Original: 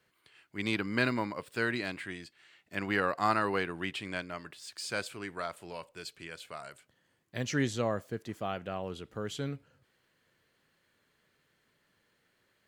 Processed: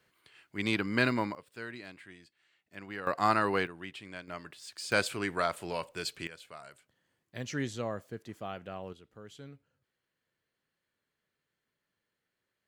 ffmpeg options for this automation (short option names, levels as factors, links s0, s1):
-af "asetnsamples=n=441:p=0,asendcmd='1.35 volume volume -11dB;3.07 volume volume 1.5dB;3.67 volume volume -7.5dB;4.28 volume volume -1dB;4.92 volume volume 7dB;6.27 volume volume -4.5dB;8.93 volume volume -12.5dB',volume=1.19"